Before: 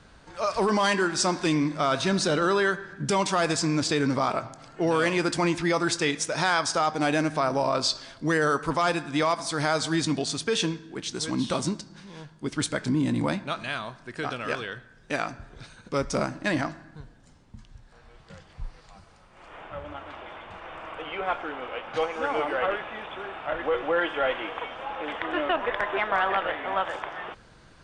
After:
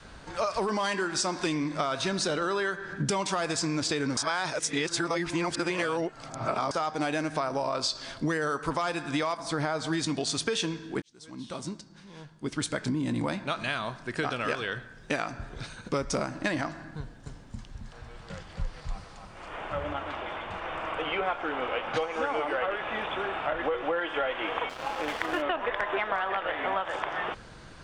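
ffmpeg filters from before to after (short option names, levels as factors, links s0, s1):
-filter_complex "[0:a]asettb=1/sr,asplit=3[s0][s1][s2];[s0]atrim=end=9.374[s3];[s1]atrim=start=9.37:end=9.93,asetpts=PTS-STARTPTS,afade=t=in:d=0.004:c=qsin,afade=t=out:st=0.556:d=0.004:c=qsin,highshelf=f=2700:g=-11[s4];[s2]atrim=start=9.926[s5];[s3][s4]acrossfade=d=0.004:c1=hsin:c2=qsin[s6];[s6][s5]acrossfade=d=0.004:c1=qsin:c2=hsin,asettb=1/sr,asplit=3[s7][s8][s9];[s7]atrim=end=16.994[s10];[s8]atrim=start=16.99:end=19.93,asetpts=PTS-STARTPTS,afade=t=in:d=0.004:c=qsin,afade=t=out:st=2.936:d=0.004:c=qsin,aecho=1:1:270:0.596,atrim=end_sample=129654[s11];[s9]atrim=start=19.926[s12];[s10][s11]acrossfade=d=0.004:c1=hsin:c2=qsin[s13];[s13][s12]acrossfade=d=0.004:c1=qsin:c2=hsin,asettb=1/sr,asplit=3[s14][s15][s16];[s14]atrim=end=24.694[s17];[s15]atrim=start=24.69:end=25.42,asetpts=PTS-STARTPTS,afade=t=in:d=0.004:c=qsin,afade=t=out:st=0.726:d=0.004:c=qsin,aeval=exprs='sgn(val(0))*max(abs(val(0))-0.00944,0)':c=same[s18];[s16]atrim=start=25.416[s19];[s17][s18]acrossfade=d=0.004:c1=hsin:c2=qsin[s20];[s20][s19]acrossfade=d=0.004:c1=qsin:c2=hsin,asplit=4[s21][s22][s23][s24];[s21]atrim=end=4.172[s25];[s22]atrim=start=4.168:end=6.712,asetpts=PTS-STARTPTS,areverse[s26];[s23]atrim=start=6.708:end=11.02,asetpts=PTS-STARTPTS,afade=t=out:st=4.308:d=0.004:c=hsin[s27];[s24]atrim=start=11.02,asetpts=PTS-STARTPTS,afade=t=in:d=3.29[s28];[s25][s26]acrossfade=d=0.004:c1=hsin:c2=hsin[s29];[s27][s28]concat=n=2:v=0:a=1[s30];[s29][s30]acrossfade=d=0.004:c1=hsin:c2=hsin,adynamicequalizer=threshold=0.0112:dfrequency=180:dqfactor=0.83:tfrequency=180:tqfactor=0.83:attack=5:release=100:ratio=0.375:range=2:mode=cutabove:tftype=bell,acompressor=threshold=0.0282:ratio=10,volume=1.88"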